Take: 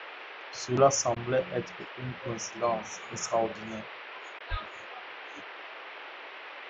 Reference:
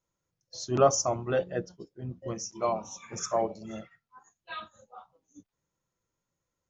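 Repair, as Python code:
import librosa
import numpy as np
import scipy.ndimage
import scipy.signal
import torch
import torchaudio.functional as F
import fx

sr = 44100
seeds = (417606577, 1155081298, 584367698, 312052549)

y = fx.highpass(x, sr, hz=140.0, slope=24, at=(4.5, 4.62), fade=0.02)
y = fx.fix_interpolate(y, sr, at_s=(1.15, 4.39), length_ms=12.0)
y = fx.noise_reduce(y, sr, print_start_s=3.98, print_end_s=4.48, reduce_db=30.0)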